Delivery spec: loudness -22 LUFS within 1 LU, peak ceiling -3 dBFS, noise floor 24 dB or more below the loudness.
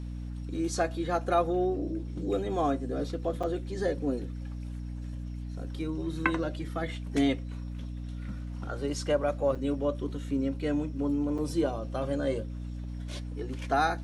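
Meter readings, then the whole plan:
dropouts 3; longest dropout 5.4 ms; hum 60 Hz; highest harmonic 300 Hz; hum level -35 dBFS; loudness -32.0 LUFS; peak level -9.5 dBFS; loudness target -22.0 LUFS
-> interpolate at 3.43/9.55/11.38 s, 5.4 ms; hum notches 60/120/180/240/300 Hz; trim +10 dB; peak limiter -3 dBFS

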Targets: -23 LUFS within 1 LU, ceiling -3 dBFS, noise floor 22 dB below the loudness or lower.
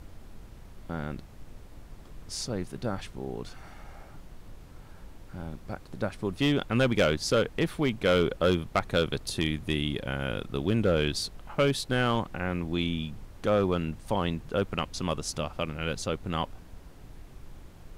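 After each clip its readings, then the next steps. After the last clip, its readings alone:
clipped samples 0.4%; clipping level -16.5 dBFS; noise floor -49 dBFS; noise floor target -52 dBFS; loudness -29.5 LUFS; peak level -16.5 dBFS; loudness target -23.0 LUFS
-> clip repair -16.5 dBFS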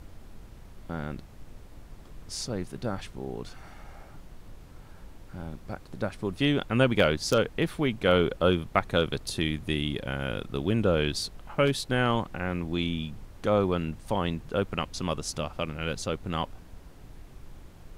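clipped samples 0.0%; noise floor -49 dBFS; noise floor target -51 dBFS
-> noise print and reduce 6 dB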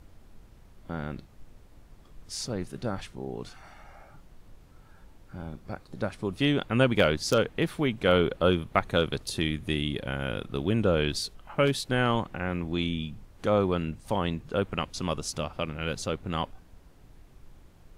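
noise floor -55 dBFS; loudness -29.0 LUFS; peak level -8.0 dBFS; loudness target -23.0 LUFS
-> trim +6 dB; peak limiter -3 dBFS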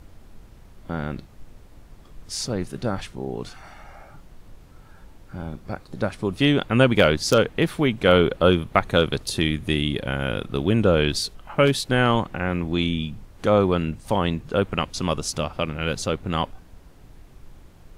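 loudness -23.0 LUFS; peak level -3.0 dBFS; noise floor -49 dBFS

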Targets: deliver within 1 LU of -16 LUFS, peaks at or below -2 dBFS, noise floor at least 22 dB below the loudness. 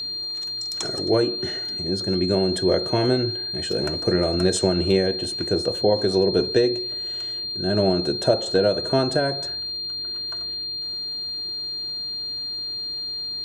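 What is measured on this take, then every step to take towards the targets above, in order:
tick rate 21 per s; steady tone 4.2 kHz; tone level -27 dBFS; loudness -23.0 LUFS; peak level -5.5 dBFS; loudness target -16.0 LUFS
-> de-click; band-stop 4.2 kHz, Q 30; trim +7 dB; peak limiter -2 dBFS

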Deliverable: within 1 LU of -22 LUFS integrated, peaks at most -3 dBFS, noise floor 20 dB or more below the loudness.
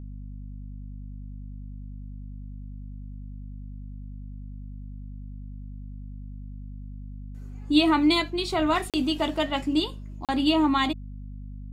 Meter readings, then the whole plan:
dropouts 2; longest dropout 37 ms; hum 50 Hz; highest harmonic 250 Hz; hum level -36 dBFS; loudness -24.5 LUFS; peak level -7.0 dBFS; loudness target -22.0 LUFS
-> interpolate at 8.90/10.25 s, 37 ms; hum notches 50/100/150/200/250 Hz; trim +2.5 dB

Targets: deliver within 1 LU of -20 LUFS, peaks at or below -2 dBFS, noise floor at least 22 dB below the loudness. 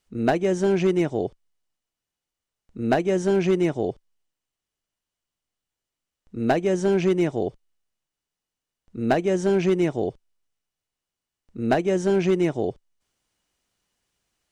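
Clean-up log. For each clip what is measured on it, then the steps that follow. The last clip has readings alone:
clipped samples 0.5%; clipping level -13.0 dBFS; loudness -23.5 LUFS; peak level -13.0 dBFS; loudness target -20.0 LUFS
-> clip repair -13 dBFS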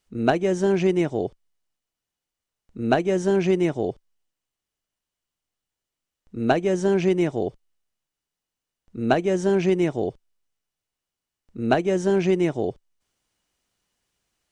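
clipped samples 0.0%; loudness -23.0 LUFS; peak level -5.5 dBFS; loudness target -20.0 LUFS
-> trim +3 dB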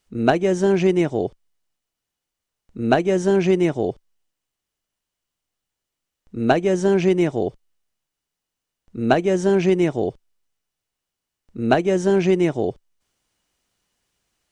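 loudness -20.0 LUFS; peak level -2.5 dBFS; noise floor -84 dBFS

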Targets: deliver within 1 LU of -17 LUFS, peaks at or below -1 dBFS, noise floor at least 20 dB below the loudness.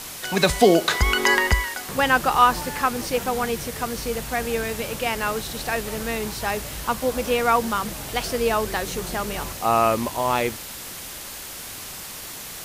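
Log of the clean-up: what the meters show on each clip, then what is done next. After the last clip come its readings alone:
noise floor -36 dBFS; noise floor target -43 dBFS; loudness -22.5 LUFS; peak level -2.5 dBFS; loudness target -17.0 LUFS
-> noise reduction 7 dB, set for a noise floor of -36 dBFS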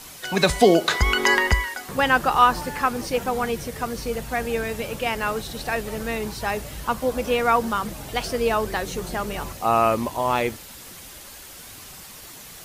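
noise floor -42 dBFS; noise floor target -43 dBFS
-> noise reduction 6 dB, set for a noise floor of -42 dBFS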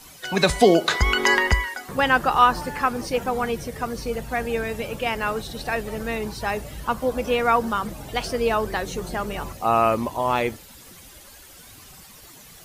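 noise floor -46 dBFS; loudness -23.0 LUFS; peak level -3.0 dBFS; loudness target -17.0 LUFS
-> trim +6 dB; peak limiter -1 dBFS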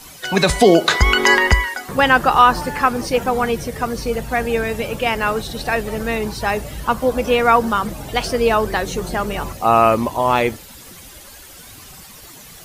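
loudness -17.5 LUFS; peak level -1.0 dBFS; noise floor -40 dBFS

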